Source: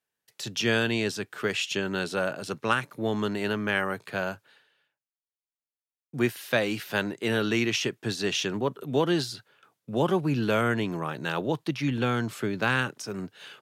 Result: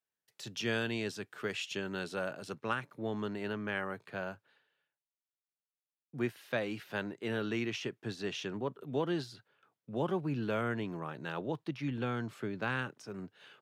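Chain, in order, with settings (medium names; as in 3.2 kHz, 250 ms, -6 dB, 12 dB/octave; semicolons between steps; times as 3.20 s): treble shelf 4.2 kHz -3 dB, from 2.55 s -10.5 dB; trim -8.5 dB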